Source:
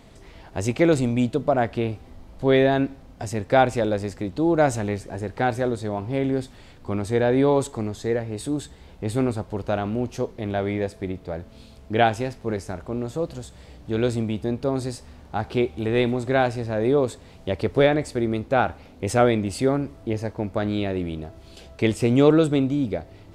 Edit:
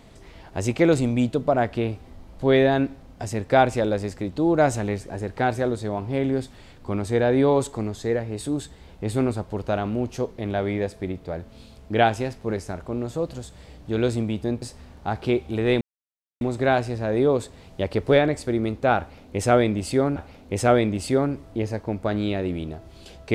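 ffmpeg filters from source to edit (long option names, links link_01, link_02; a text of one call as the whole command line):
ffmpeg -i in.wav -filter_complex "[0:a]asplit=4[link_01][link_02][link_03][link_04];[link_01]atrim=end=14.622[link_05];[link_02]atrim=start=14.898:end=16.09,asetpts=PTS-STARTPTS,afade=type=out:start_time=1.188:duration=0.004:curve=hsin,apad=pad_dur=0.6[link_06];[link_03]atrim=start=16.09:end=19.842,asetpts=PTS-STARTPTS,afade=type=in:duration=0.004:curve=hsin[link_07];[link_04]atrim=start=18.668[link_08];[link_06][link_07]concat=n=2:v=0:a=1[link_09];[link_05][link_09]acrossfade=duration=0.004:curve1=hsin:curve2=hsin[link_10];[link_10][link_08]acrossfade=duration=0.004:curve1=hsin:curve2=hsin" out.wav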